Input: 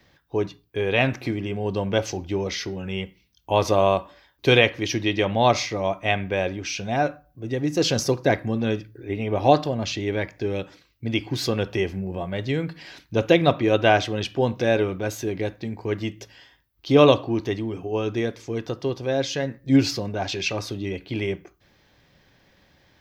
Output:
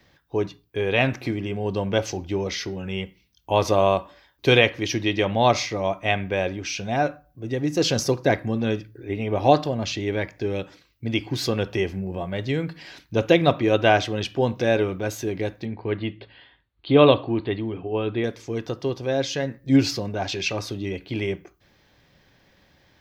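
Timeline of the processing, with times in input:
15.65–18.24 s: steep low-pass 4.4 kHz 96 dB/octave

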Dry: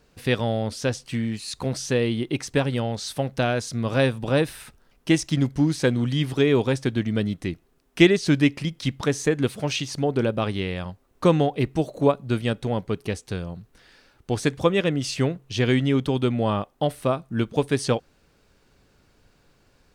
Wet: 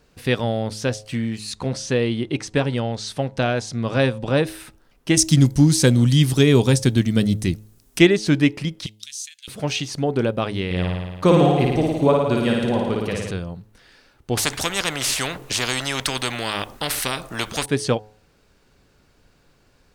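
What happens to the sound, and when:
1.55–4.47 s: low-pass 8.3 kHz
5.17–7.99 s: tone controls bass +8 dB, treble +15 dB
8.86–9.48 s: inverse Chebyshev high-pass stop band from 740 Hz, stop band 70 dB
10.65–13.31 s: flutter echo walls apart 9.5 m, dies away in 1.3 s
14.37–17.66 s: spectrum-flattening compressor 4:1
whole clip: de-hum 106.6 Hz, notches 9; trim +2 dB

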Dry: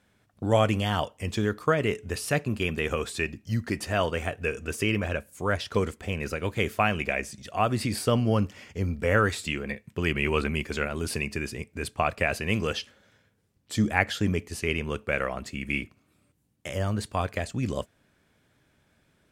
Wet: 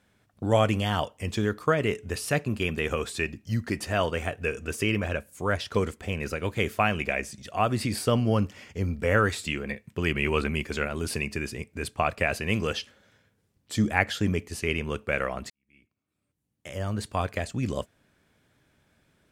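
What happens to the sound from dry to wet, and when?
15.50–17.09 s: fade in quadratic

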